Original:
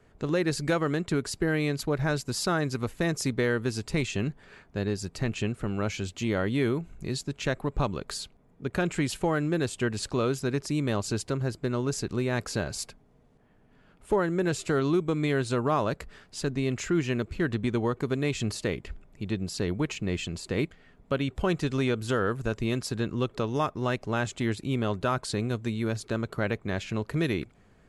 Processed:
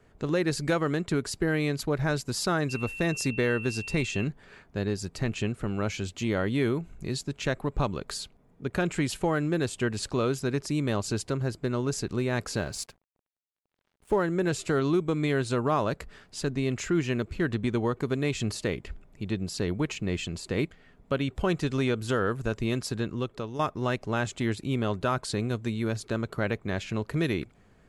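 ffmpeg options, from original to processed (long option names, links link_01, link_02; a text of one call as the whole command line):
ffmpeg -i in.wav -filter_complex "[0:a]asettb=1/sr,asplit=3[link_01][link_02][link_03];[link_01]atrim=end=2.694[link_04];[link_02]atrim=start=2.69:end=4.24,asetpts=PTS-STARTPTS,afade=type=in:duration=0.004:curve=qsin,afade=type=out:start_time=1.546:duration=0.004:curve=qsin,aeval=exprs='val(0)+0.0141*sin(2*PI*2700*n/s)':channel_layout=same[link_05];[link_03]atrim=start=4.236[link_06];[link_04][link_05]acrossfade=duration=0.004:curve1=hsin:curve2=qsin[link_07];[link_07][link_06]acrossfade=duration=0.004:curve1=qsin:curve2=hsin,asettb=1/sr,asplit=3[link_08][link_09][link_10];[link_08]atrim=end=12.564[link_11];[link_09]atrim=start=12.56:end=14.23,asetpts=PTS-STARTPTS,afade=type=in:duration=0.004:curve=qsin,afade=type=out:start_time=1.666:duration=0.004:curve=qsin,aeval=exprs='sgn(val(0))*max(abs(val(0))-0.00224,0)':channel_layout=same[link_12];[link_10]atrim=start=14.226[link_13];[link_11][link_12]acrossfade=duration=0.004:curve1=hsin:curve2=qsin[link_14];[link_14][link_13]acrossfade=duration=0.004:curve1=qsin:curve2=hsin,asplit=2[link_15][link_16];[link_15]atrim=end=23.59,asetpts=PTS-STARTPTS,afade=type=out:start_time=22.91:duration=0.68:silence=0.375837[link_17];[link_16]atrim=start=23.59,asetpts=PTS-STARTPTS,afade=type=in:duration=0.004:curve=hsin:silence=0.375837[link_18];[link_17][link_18]concat=n=2:v=0:a=1" out.wav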